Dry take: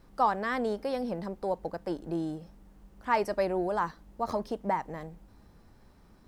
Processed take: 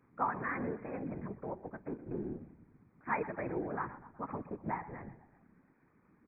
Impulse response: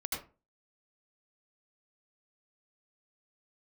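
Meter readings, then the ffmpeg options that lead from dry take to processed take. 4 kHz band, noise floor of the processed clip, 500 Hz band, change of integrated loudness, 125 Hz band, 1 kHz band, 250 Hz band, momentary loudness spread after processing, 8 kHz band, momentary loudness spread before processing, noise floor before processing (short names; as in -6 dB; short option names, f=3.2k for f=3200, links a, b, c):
under -35 dB, -70 dBFS, -10.0 dB, -8.0 dB, -2.5 dB, -8.5 dB, -6.0 dB, 12 LU, under -25 dB, 11 LU, -58 dBFS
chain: -filter_complex "[0:a]afftfilt=real='re*between(b*sr/4096,140,2500)':imag='im*between(b*sr/4096,140,2500)':win_size=4096:overlap=0.75,equalizer=f=610:w=1.3:g=-10,asplit=6[a][b][c][d][e][f];[b]adelay=123,afreqshift=-34,volume=-16dB[g];[c]adelay=246,afreqshift=-68,volume=-21.2dB[h];[d]adelay=369,afreqshift=-102,volume=-26.4dB[i];[e]adelay=492,afreqshift=-136,volume=-31.6dB[j];[f]adelay=615,afreqshift=-170,volume=-36.8dB[k];[a][g][h][i][j][k]amix=inputs=6:normalize=0,afftfilt=real='hypot(re,im)*cos(2*PI*random(0))':imag='hypot(re,im)*sin(2*PI*random(1))':win_size=512:overlap=0.75,volume=2.5dB"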